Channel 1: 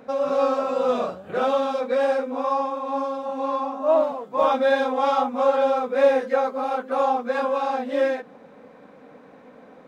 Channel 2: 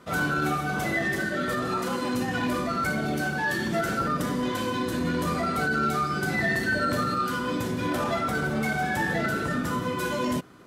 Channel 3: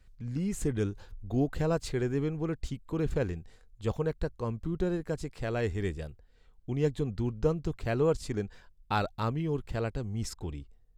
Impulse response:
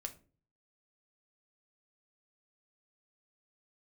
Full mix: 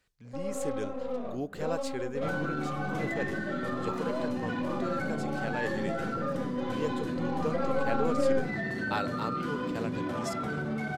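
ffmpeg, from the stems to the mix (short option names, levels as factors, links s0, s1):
-filter_complex "[0:a]tiltshelf=f=1300:g=6,aeval=exprs='0.355*(cos(1*acos(clip(val(0)/0.355,-1,1)))-cos(1*PI/2))+0.02*(cos(8*acos(clip(val(0)/0.355,-1,1)))-cos(8*PI/2))':c=same,lowshelf=f=450:g=9.5,adelay=250,volume=0.282,afade=t=in:st=7.24:d=0.57:silence=0.237137,asplit=2[s0][s1];[s1]volume=0.562[s2];[1:a]highpass=170,aemphasis=mode=reproduction:type=bsi,adelay=2150,volume=0.794[s3];[2:a]highpass=f=490:p=1,volume=0.668,asplit=2[s4][s5];[s5]volume=0.422[s6];[s0][s3]amix=inputs=2:normalize=0,acompressor=threshold=0.0316:ratio=6,volume=1[s7];[3:a]atrim=start_sample=2205[s8];[s2][s6]amix=inputs=2:normalize=0[s9];[s9][s8]afir=irnorm=-1:irlink=0[s10];[s4][s7][s10]amix=inputs=3:normalize=0"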